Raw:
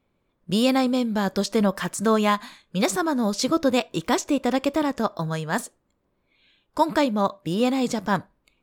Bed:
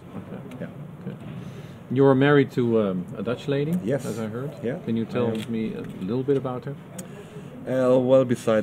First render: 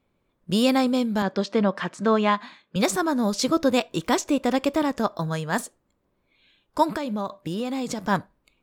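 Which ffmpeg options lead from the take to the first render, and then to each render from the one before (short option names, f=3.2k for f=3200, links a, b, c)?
-filter_complex "[0:a]asettb=1/sr,asplit=3[a][b][c];[a]atrim=end=1.224[d];[b]atrim=start=1.22:end=2.76,asetpts=PTS-STARTPTS,afade=t=in:d=0.004:c=qsin,afade=t=out:st=1.536:d=0.004:c=qsin,highpass=160,lowpass=3.7k[e];[c]atrim=start=2.756[f];[d][e]acrossfade=d=0.004:c1=hsin:c2=qsin[g];[g][f]acrossfade=d=0.004:c1=qsin:c2=hsin,asettb=1/sr,asplit=3[h][i][j];[h]atrim=end=6.954[k];[i]atrim=start=6.95:end=8.07,asetpts=PTS-STARTPTS,afade=t=in:d=0.004:c=qsin,afade=t=out:st=1.116:d=0.004:c=qsin,acompressor=threshold=-24dB:ratio=6:attack=3.2:release=140:knee=1:detection=peak[l];[j]atrim=start=8.066[m];[k][l]acrossfade=d=0.004:c1=hsin:c2=qsin[n];[n][m]acrossfade=d=0.004:c1=qsin:c2=hsin"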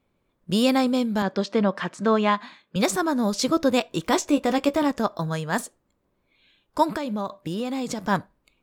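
-filter_complex "[0:a]asettb=1/sr,asplit=3[a][b][c];[a]atrim=end=4.094[d];[b]atrim=start=4.09:end=4.91,asetpts=PTS-STARTPTS,afade=t=in:d=0.004:c=qsin,afade=t=out:st=0.816:d=0.004:c=qsin,asplit=2[e][f];[f]adelay=14,volume=-7dB[g];[e][g]amix=inputs=2:normalize=0,atrim=end_sample=36162[h];[c]atrim=start=4.906[i];[d][h]acrossfade=d=0.004:c1=hsin:c2=qsin[j];[j][i]acrossfade=d=0.004:c1=qsin:c2=hsin"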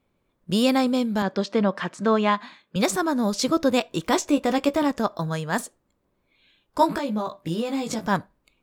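-filter_complex "[0:a]asettb=1/sr,asplit=3[a][b][c];[a]atrim=end=6.784[d];[b]atrim=start=6.78:end=8.08,asetpts=PTS-STARTPTS,afade=t=in:d=0.004:c=qsin,afade=t=out:st=1.296:d=0.004:c=qsin,asplit=2[e][f];[f]adelay=18,volume=-3.5dB[g];[e][g]amix=inputs=2:normalize=0,atrim=end_sample=57330[h];[c]atrim=start=8.076[i];[d][h]acrossfade=d=0.004:c1=hsin:c2=qsin[j];[j][i]acrossfade=d=0.004:c1=qsin:c2=hsin"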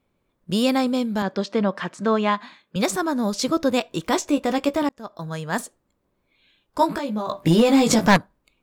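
-filter_complex "[0:a]asplit=3[a][b][c];[a]afade=t=out:st=7.28:d=0.02[d];[b]aeval=exprs='0.376*sin(PI/2*2.51*val(0)/0.376)':c=same,afade=t=in:st=7.28:d=0.02,afade=t=out:st=8.16:d=0.02[e];[c]afade=t=in:st=8.16:d=0.02[f];[d][e][f]amix=inputs=3:normalize=0,asplit=2[g][h];[g]atrim=end=4.89,asetpts=PTS-STARTPTS,afade=t=out:st=4.886:d=0.004:c=hsin[i];[h]atrim=start=4.89,asetpts=PTS-STARTPTS,afade=t=in:d=0.61[j];[i][j]concat=n=2:v=0:a=1"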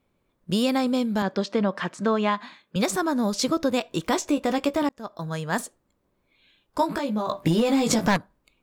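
-af "acompressor=threshold=-18dB:ratio=6"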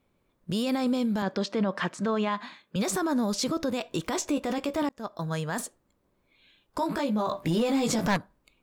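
-af "alimiter=limit=-19dB:level=0:latency=1:release=21"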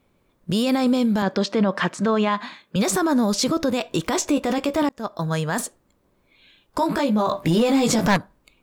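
-af "volume=7dB"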